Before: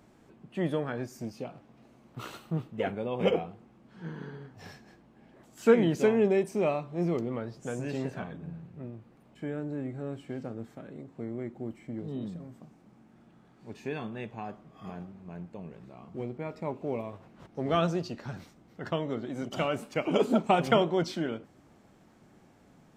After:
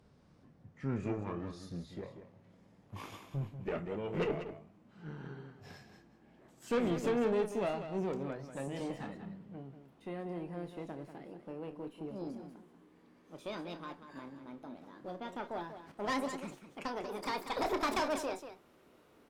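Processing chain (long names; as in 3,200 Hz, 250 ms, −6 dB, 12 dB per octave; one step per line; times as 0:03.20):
gliding playback speed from 66% → 172%
tube saturation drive 24 dB, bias 0.5
loudspeakers that aren't time-aligned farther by 10 metres −11 dB, 65 metres −10 dB
level −3.5 dB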